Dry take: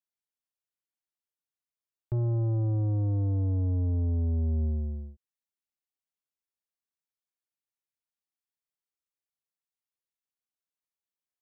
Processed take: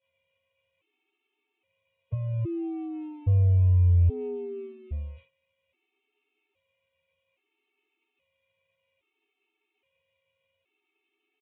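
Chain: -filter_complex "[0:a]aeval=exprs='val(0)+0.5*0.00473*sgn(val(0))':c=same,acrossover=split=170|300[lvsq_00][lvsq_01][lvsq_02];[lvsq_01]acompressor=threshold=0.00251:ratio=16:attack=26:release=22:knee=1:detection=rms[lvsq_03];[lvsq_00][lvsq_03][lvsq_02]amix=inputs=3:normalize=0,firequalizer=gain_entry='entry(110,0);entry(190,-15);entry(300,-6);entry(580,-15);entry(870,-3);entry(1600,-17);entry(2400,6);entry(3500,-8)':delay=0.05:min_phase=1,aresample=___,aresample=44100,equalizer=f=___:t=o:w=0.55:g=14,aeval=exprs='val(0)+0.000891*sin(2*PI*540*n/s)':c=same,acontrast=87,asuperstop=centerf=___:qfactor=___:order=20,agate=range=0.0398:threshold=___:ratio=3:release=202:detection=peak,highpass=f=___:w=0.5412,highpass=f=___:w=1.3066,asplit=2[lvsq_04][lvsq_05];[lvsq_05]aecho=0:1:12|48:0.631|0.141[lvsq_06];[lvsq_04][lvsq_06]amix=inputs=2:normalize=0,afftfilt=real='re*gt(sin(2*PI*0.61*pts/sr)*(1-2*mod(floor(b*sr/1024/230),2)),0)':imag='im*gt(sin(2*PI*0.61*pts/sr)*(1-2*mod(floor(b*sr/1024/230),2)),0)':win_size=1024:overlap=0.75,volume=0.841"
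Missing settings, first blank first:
8000, 410, 830, 7.6, 0.00708, 84, 84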